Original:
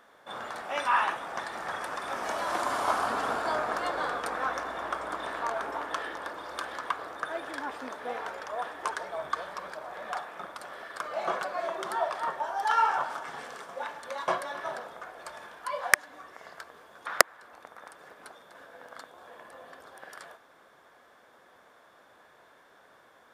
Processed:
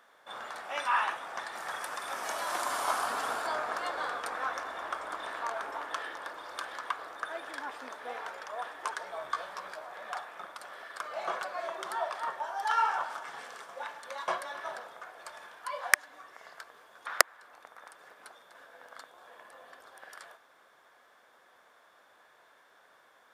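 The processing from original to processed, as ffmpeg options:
ffmpeg -i in.wav -filter_complex "[0:a]asettb=1/sr,asplit=3[link_01][link_02][link_03];[link_01]atrim=end=1.554[link_04];[link_02]atrim=start=1.55:end=3.47,asetpts=PTS-STARTPTS,afade=type=in:duration=0.004:curve=qsin,afade=type=out:start_time=1.916:duration=0.004:curve=qsin,highshelf=frequency=7300:gain=10[link_05];[link_03]atrim=start=3.466[link_06];[link_04][link_05]acrossfade=duration=0.004:curve1=hsin:curve2=qsin[link_07];[link_07][link_06]acrossfade=duration=0.004:curve1=qsin:curve2=hsin,asettb=1/sr,asplit=3[link_08][link_09][link_10];[link_08]atrim=end=9.054[link_11];[link_09]atrim=start=9.05:end=9.85,asetpts=PTS-STARTPTS,afade=type=in:duration=0.004:curve=qsin,afade=type=out:start_time=0.796:duration=0.004:curve=qsin,asplit=2[link_12][link_13];[link_13]adelay=16,volume=-5.5dB[link_14];[link_12][link_14]amix=inputs=2:normalize=0,atrim=end_sample=35280[link_15];[link_10]atrim=start=9.846[link_16];[link_11][link_15]acrossfade=duration=0.004:curve1=hsin:curve2=qsin[link_17];[link_17][link_16]acrossfade=duration=0.004:curve1=qsin:curve2=hsin,lowshelf=frequency=430:gain=-11,volume=-1.5dB" out.wav

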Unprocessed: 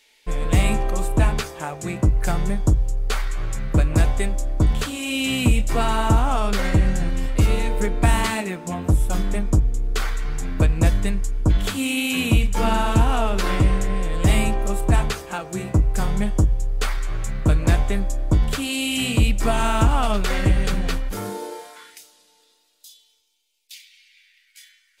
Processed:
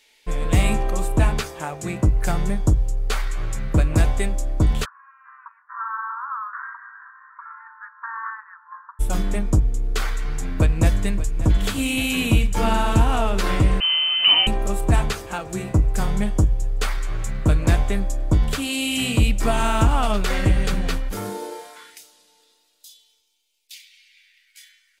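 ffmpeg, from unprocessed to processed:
ffmpeg -i in.wav -filter_complex "[0:a]asplit=3[link_01][link_02][link_03];[link_01]afade=type=out:start_time=4.84:duration=0.02[link_04];[link_02]asuperpass=centerf=1300:order=12:qfactor=1.7,afade=type=in:start_time=4.84:duration=0.02,afade=type=out:start_time=8.99:duration=0.02[link_05];[link_03]afade=type=in:start_time=8.99:duration=0.02[link_06];[link_04][link_05][link_06]amix=inputs=3:normalize=0,asplit=2[link_07][link_08];[link_08]afade=type=in:start_time=10.21:duration=0.01,afade=type=out:start_time=11.27:duration=0.01,aecho=0:1:580|1160|1740|2320|2900|3480|4060|4640|5220|5800|6380|6960:0.199526|0.159621|0.127697|0.102157|0.0817259|0.0653808|0.0523046|0.0418437|0.0334749|0.02678|0.021424|0.0171392[link_09];[link_07][link_09]amix=inputs=2:normalize=0,asettb=1/sr,asplit=3[link_10][link_11][link_12];[link_10]atrim=end=13.804[link_13];[link_11]atrim=start=13.8:end=14.47,asetpts=PTS-STARTPTS,afade=type=in:duration=0.004:curve=qsin,afade=type=out:start_time=0.666:duration=0.004:curve=qsin,lowpass=frequency=2600:width_type=q:width=0.5098,lowpass=frequency=2600:width_type=q:width=0.6013,lowpass=frequency=2600:width_type=q:width=0.9,lowpass=frequency=2600:width_type=q:width=2.563,afreqshift=-3100[link_14];[link_12]atrim=start=14.466[link_15];[link_13][link_14]acrossfade=duration=0.004:curve1=hsin:curve2=qsin[link_16];[link_16][link_15]acrossfade=duration=0.004:curve1=qsin:curve2=hsin" out.wav

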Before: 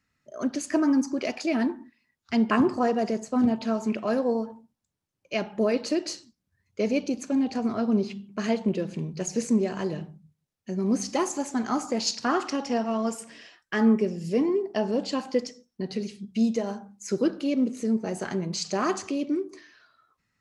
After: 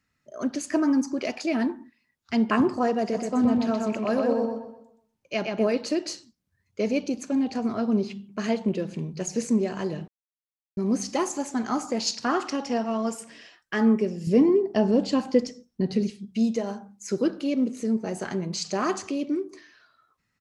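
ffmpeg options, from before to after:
ffmpeg -i in.wav -filter_complex "[0:a]asplit=3[link_01][link_02][link_03];[link_01]afade=type=out:start_time=3.12:duration=0.02[link_04];[link_02]asplit=2[link_05][link_06];[link_06]adelay=125,lowpass=frequency=4600:poles=1,volume=-3dB,asplit=2[link_07][link_08];[link_08]adelay=125,lowpass=frequency=4600:poles=1,volume=0.37,asplit=2[link_09][link_10];[link_10]adelay=125,lowpass=frequency=4600:poles=1,volume=0.37,asplit=2[link_11][link_12];[link_12]adelay=125,lowpass=frequency=4600:poles=1,volume=0.37,asplit=2[link_13][link_14];[link_14]adelay=125,lowpass=frequency=4600:poles=1,volume=0.37[link_15];[link_05][link_07][link_09][link_11][link_13][link_15]amix=inputs=6:normalize=0,afade=type=in:start_time=3.12:duration=0.02,afade=type=out:start_time=5.69:duration=0.02[link_16];[link_03]afade=type=in:start_time=5.69:duration=0.02[link_17];[link_04][link_16][link_17]amix=inputs=3:normalize=0,asettb=1/sr,asplit=3[link_18][link_19][link_20];[link_18]atrim=end=14.274[link_21];[link_19]atrim=start=14.27:end=16.1,asetpts=PTS-STARTPTS,afade=type=in:duration=0.004:curve=qsin,afade=type=out:start_time=1.826:duration=0.004:curve=qsin,lowshelf=frequency=370:gain=9.5[link_22];[link_20]atrim=start=16.096[link_23];[link_21][link_22]acrossfade=duration=0.004:curve1=hsin:curve2=qsin[link_24];[link_24][link_23]acrossfade=duration=0.004:curve1=qsin:curve2=hsin,asplit=3[link_25][link_26][link_27];[link_25]atrim=end=10.08,asetpts=PTS-STARTPTS,afade=type=out:start_time=10.076:duration=0.004:curve=hsin[link_28];[link_26]atrim=start=10.08:end=10.77,asetpts=PTS-STARTPTS,volume=0[link_29];[link_27]atrim=start=10.77,asetpts=PTS-STARTPTS,afade=type=in:duration=0.004:curve=hsin[link_30];[link_28][link_29][link_30]concat=n=3:v=0:a=1" out.wav

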